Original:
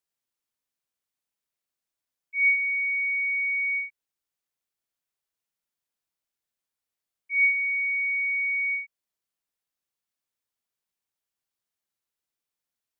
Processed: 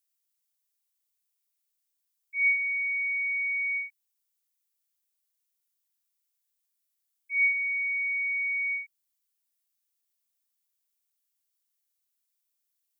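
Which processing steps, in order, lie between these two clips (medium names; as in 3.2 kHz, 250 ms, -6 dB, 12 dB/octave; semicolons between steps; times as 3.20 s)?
tilt EQ +4.5 dB/octave; trim -8 dB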